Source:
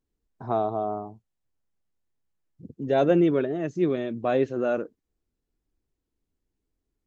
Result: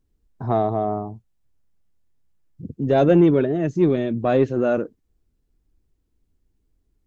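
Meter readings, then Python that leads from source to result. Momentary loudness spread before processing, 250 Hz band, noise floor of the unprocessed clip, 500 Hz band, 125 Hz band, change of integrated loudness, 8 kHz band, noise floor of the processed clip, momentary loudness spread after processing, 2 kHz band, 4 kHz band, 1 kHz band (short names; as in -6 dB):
16 LU, +6.5 dB, -83 dBFS, +4.5 dB, +9.5 dB, +5.5 dB, n/a, -70 dBFS, 17 LU, +3.5 dB, +3.0 dB, +4.0 dB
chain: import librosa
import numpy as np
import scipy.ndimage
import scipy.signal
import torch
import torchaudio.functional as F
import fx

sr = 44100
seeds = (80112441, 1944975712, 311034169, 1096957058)

p1 = fx.low_shelf(x, sr, hz=190.0, db=10.5)
p2 = 10.0 ** (-16.5 / 20.0) * np.tanh(p1 / 10.0 ** (-16.5 / 20.0))
y = p1 + F.gain(torch.from_numpy(p2), -4.5).numpy()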